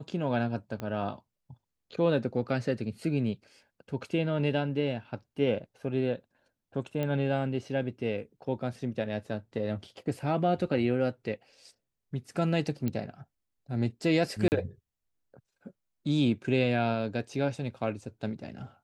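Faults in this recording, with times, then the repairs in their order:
0.8 pop -23 dBFS
7.03 pop -20 dBFS
12.88 pop -19 dBFS
14.48–14.52 gap 39 ms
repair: de-click; interpolate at 14.48, 39 ms

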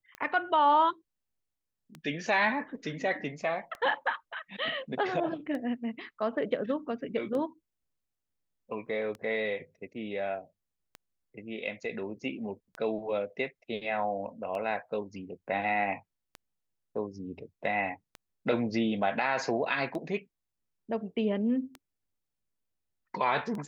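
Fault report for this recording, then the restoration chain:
tick 33 1/3 rpm -26 dBFS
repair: de-click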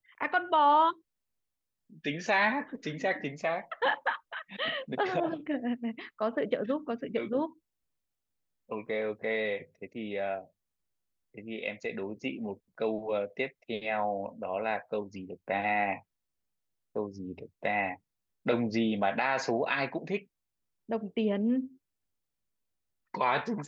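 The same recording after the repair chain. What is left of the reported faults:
none

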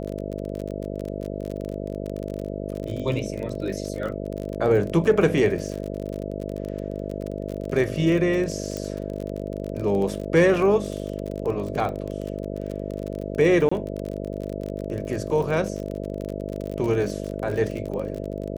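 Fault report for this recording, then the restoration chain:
buzz 50 Hz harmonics 13 -31 dBFS
crackle 34/s -29 dBFS
8.77 pop -17 dBFS
13.69–13.71 gap 25 ms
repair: de-click; de-hum 50 Hz, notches 13; interpolate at 13.69, 25 ms

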